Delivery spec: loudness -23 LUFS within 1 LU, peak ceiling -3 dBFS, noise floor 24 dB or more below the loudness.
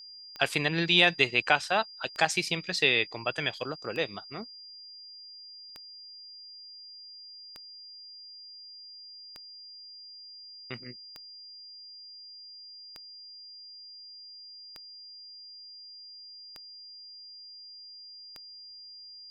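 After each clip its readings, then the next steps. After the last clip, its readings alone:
clicks 11; steady tone 4800 Hz; tone level -45 dBFS; loudness -27.0 LUFS; peak -5.5 dBFS; loudness target -23.0 LUFS
-> de-click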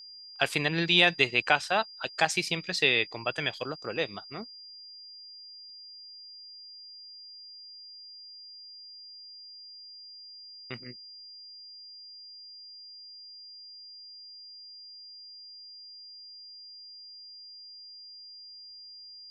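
clicks 0; steady tone 4800 Hz; tone level -45 dBFS
-> notch 4800 Hz, Q 30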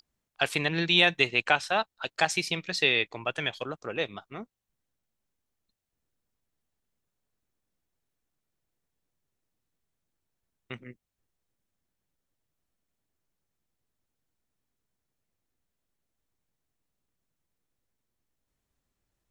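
steady tone none; loudness -26.5 LUFS; peak -5.5 dBFS; loudness target -23.0 LUFS
-> gain +3.5 dB; limiter -3 dBFS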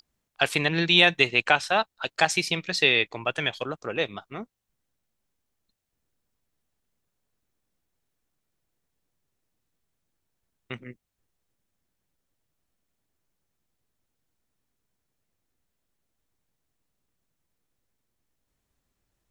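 loudness -23.0 LUFS; peak -3.0 dBFS; noise floor -80 dBFS

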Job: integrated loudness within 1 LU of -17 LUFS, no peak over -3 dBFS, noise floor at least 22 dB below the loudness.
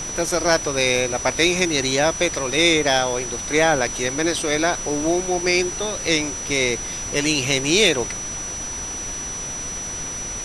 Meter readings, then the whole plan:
steady tone 5900 Hz; tone level -28 dBFS; noise floor -30 dBFS; noise floor target -43 dBFS; loudness -20.5 LUFS; peak -3.0 dBFS; loudness target -17.0 LUFS
-> notch 5900 Hz, Q 30; noise print and reduce 13 dB; gain +3.5 dB; limiter -3 dBFS

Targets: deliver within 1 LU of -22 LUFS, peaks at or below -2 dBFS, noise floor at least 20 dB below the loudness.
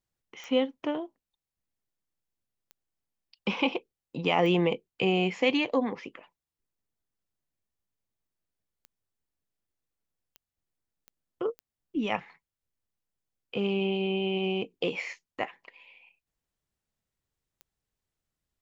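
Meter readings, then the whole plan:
clicks 8; loudness -29.5 LUFS; peak -11.5 dBFS; loudness target -22.0 LUFS
-> de-click; gain +7.5 dB

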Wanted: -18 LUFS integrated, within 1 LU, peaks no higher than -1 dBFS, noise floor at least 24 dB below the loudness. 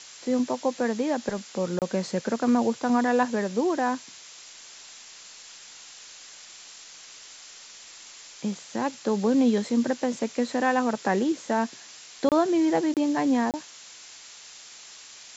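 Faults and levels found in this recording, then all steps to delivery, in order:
dropouts 4; longest dropout 28 ms; noise floor -47 dBFS; noise floor target -50 dBFS; loudness -26.0 LUFS; peak -9.5 dBFS; loudness target -18.0 LUFS
-> interpolate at 1.79/12.29/12.94/13.51, 28 ms; noise print and reduce 6 dB; gain +8 dB

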